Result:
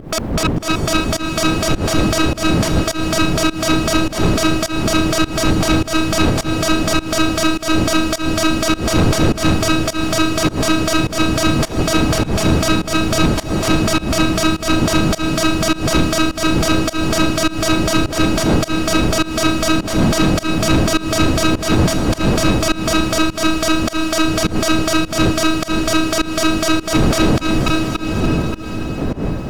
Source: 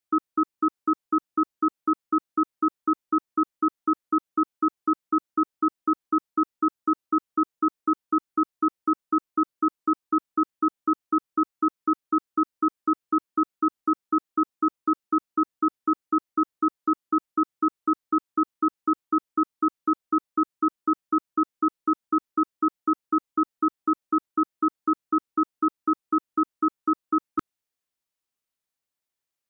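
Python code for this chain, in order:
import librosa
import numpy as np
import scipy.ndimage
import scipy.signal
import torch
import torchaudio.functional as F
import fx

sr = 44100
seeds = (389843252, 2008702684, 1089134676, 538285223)

p1 = fx.tracing_dist(x, sr, depth_ms=0.28)
p2 = fx.dmg_wind(p1, sr, seeds[0], corner_hz=230.0, level_db=-38.0)
p3 = fx.low_shelf(p2, sr, hz=280.0, db=-4.0)
p4 = p3 + fx.echo_feedback(p3, sr, ms=287, feedback_pct=57, wet_db=-18.5, dry=0)
p5 = fx.fold_sine(p4, sr, drive_db=14, ceiling_db=-10.0)
p6 = fx.over_compress(p5, sr, threshold_db=-19.0, ratio=-0.5)
p7 = fx.leveller(p6, sr, passes=2)
p8 = fx.echo_diffused(p7, sr, ms=590, feedback_pct=48, wet_db=-8)
y = fx.volume_shaper(p8, sr, bpm=103, per_beat=1, depth_db=-21, release_ms=194.0, shape='fast start')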